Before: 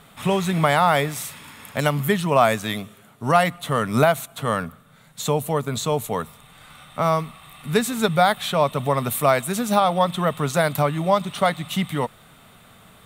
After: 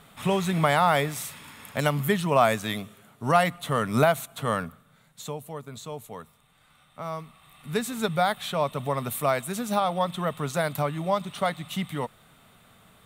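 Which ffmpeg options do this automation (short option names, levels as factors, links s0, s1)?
-af "volume=1.68,afade=t=out:st=4.54:d=0.84:silence=0.281838,afade=t=in:st=7.05:d=0.89:silence=0.398107"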